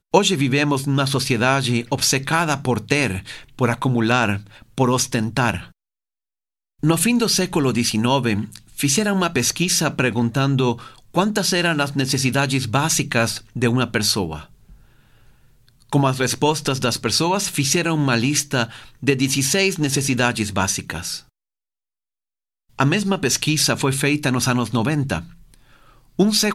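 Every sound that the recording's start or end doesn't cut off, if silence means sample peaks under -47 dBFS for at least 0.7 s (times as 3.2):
6.79–21.29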